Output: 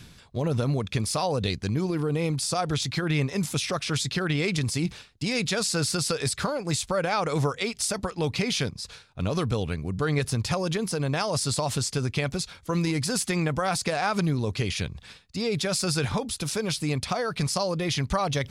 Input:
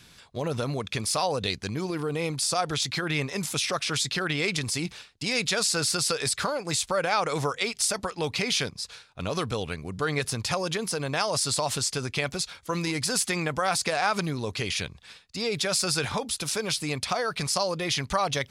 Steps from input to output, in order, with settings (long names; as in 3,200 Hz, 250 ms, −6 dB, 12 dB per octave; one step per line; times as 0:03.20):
low-shelf EQ 340 Hz +10.5 dB
reversed playback
upward compression, threshold −34 dBFS
reversed playback
level −2.5 dB